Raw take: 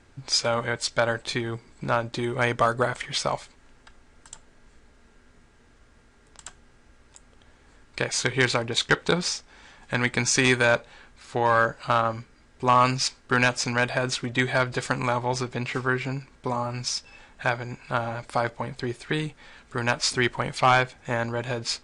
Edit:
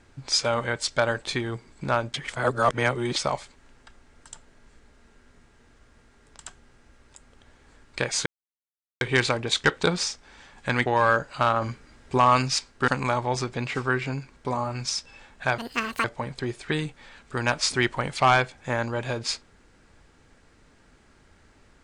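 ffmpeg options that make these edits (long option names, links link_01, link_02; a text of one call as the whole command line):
ffmpeg -i in.wav -filter_complex "[0:a]asplit=10[link_01][link_02][link_03][link_04][link_05][link_06][link_07][link_08][link_09][link_10];[link_01]atrim=end=2.142[link_11];[link_02]atrim=start=2.138:end=3.162,asetpts=PTS-STARTPTS,areverse[link_12];[link_03]atrim=start=3.158:end=8.26,asetpts=PTS-STARTPTS,afade=type=out:start_time=5.098:duration=0.004:curve=hsin,apad=pad_dur=0.75[link_13];[link_04]atrim=start=8.26:end=10.112,asetpts=PTS-STARTPTS,afade=type=in:duration=0.004:curve=hsin[link_14];[link_05]atrim=start=11.348:end=12.112[link_15];[link_06]atrim=start=12.108:end=12.672,asetpts=PTS-STARTPTS,volume=4.5dB[link_16];[link_07]atrim=start=12.668:end=13.372[link_17];[link_08]atrim=start=14.868:end=17.574[link_18];[link_09]atrim=start=17.57:end=18.45,asetpts=PTS-STARTPTS,asetrate=83790,aresample=44100,atrim=end_sample=20425,asetpts=PTS-STARTPTS[link_19];[link_10]atrim=start=18.446[link_20];[link_11][link_12]acrossfade=duration=0.004:curve1=hsin:curve2=hsin[link_21];[link_13][link_14]concat=n=2:v=0:a=1[link_22];[link_21][link_22]acrossfade=duration=0.004:curve1=hsin:curve2=hsin[link_23];[link_23][link_15]acrossfade=duration=0.004:curve1=hsin:curve2=hsin[link_24];[link_24][link_16]acrossfade=duration=0.004:curve1=hsin:curve2=hsin[link_25];[link_25][link_17]acrossfade=duration=0.004:curve1=hsin:curve2=hsin[link_26];[link_26][link_18]acrossfade=duration=0.004:curve1=hsin:curve2=hsin[link_27];[link_27][link_19]acrossfade=duration=0.004:curve1=hsin:curve2=hsin[link_28];[link_28][link_20]acrossfade=duration=0.004:curve1=hsin:curve2=hsin" out.wav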